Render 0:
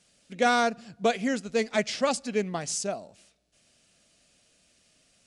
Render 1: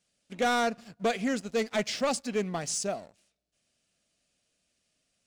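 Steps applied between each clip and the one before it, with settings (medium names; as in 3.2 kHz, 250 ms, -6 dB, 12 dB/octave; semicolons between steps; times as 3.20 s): waveshaping leveller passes 2; trim -8 dB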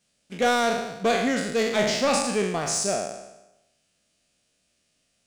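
spectral sustain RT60 0.95 s; trim +3 dB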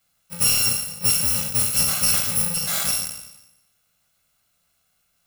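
bit-reversed sample order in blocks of 128 samples; trim +2.5 dB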